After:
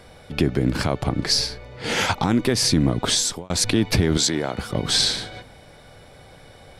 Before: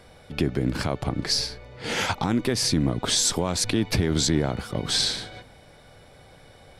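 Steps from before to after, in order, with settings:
0:03.07–0:03.50: fade out
0:04.17–0:04.58: high-pass filter 480 Hz 6 dB per octave
level +4 dB

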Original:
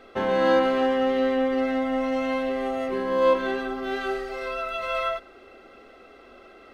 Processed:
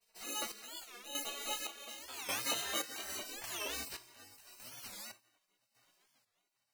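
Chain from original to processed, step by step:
vocoder with an arpeggio as carrier bare fifth, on C4, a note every 225 ms
source passing by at 0:02.85, 28 m/s, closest 22 metres
low-shelf EQ 200 Hz −6 dB
on a send at −2.5 dB: convolution reverb RT60 0.45 s, pre-delay 4 ms
on the sum: decimation without filtering 13×
multi-voice chorus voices 2, 0.59 Hz, delay 14 ms, depth 4.4 ms
gate on every frequency bin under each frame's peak −20 dB weak
square-wave tremolo 0.87 Hz, depth 65%, duty 45%
wow of a warped record 45 rpm, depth 250 cents
level +6 dB

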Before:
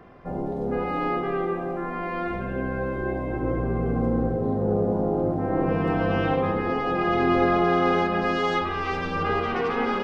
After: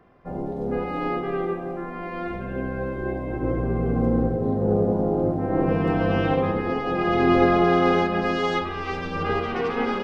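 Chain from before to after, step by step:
dynamic equaliser 1,200 Hz, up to −3 dB, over −35 dBFS, Q 0.85
expander for the loud parts 1.5 to 1, over −43 dBFS
level +4.5 dB

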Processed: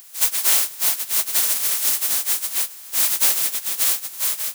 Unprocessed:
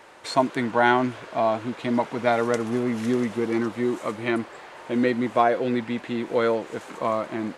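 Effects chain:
compressing power law on the bin magnitudes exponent 0.16
RIAA equalisation recording
time stretch by phase vocoder 0.6×
level −5 dB

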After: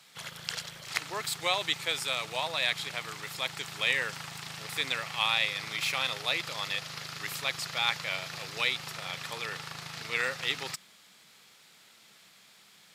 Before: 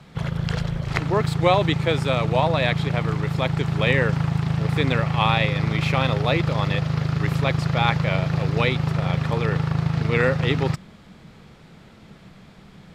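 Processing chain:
first difference
level +6 dB

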